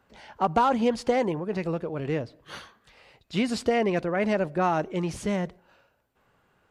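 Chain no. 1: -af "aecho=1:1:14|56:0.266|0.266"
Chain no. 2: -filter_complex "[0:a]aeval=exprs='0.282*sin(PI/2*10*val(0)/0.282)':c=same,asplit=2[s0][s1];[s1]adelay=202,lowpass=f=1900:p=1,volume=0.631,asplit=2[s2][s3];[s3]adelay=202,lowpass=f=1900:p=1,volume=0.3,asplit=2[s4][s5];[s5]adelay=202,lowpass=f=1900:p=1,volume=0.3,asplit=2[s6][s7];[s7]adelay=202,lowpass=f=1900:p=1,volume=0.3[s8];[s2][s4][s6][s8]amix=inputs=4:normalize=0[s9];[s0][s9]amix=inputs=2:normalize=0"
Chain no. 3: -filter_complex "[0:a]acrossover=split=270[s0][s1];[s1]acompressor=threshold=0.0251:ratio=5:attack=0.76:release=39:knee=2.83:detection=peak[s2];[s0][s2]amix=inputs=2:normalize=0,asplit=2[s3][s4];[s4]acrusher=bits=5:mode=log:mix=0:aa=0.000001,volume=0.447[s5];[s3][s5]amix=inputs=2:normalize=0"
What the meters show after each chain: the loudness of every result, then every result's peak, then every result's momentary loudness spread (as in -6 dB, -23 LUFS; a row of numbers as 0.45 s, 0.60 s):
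-26.5 LUFS, -14.0 LUFS, -28.5 LUFS; -11.5 dBFS, -6.0 dBFS, -15.5 dBFS; 11 LU, 12 LU, 11 LU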